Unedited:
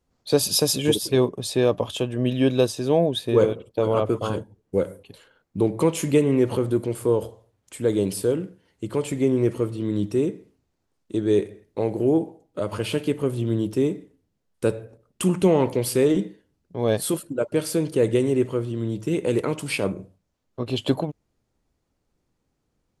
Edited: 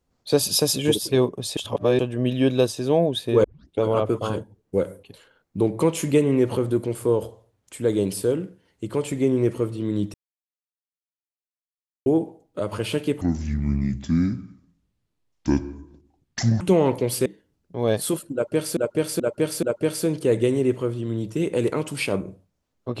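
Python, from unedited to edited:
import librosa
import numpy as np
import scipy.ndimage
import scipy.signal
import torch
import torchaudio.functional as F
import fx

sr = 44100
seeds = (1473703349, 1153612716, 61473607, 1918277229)

y = fx.edit(x, sr, fx.reverse_span(start_s=1.57, length_s=0.42),
    fx.tape_start(start_s=3.44, length_s=0.37),
    fx.silence(start_s=10.14, length_s=1.92),
    fx.speed_span(start_s=13.21, length_s=2.14, speed=0.63),
    fx.cut(start_s=16.0, length_s=0.26),
    fx.repeat(start_s=17.34, length_s=0.43, count=4), tone=tone)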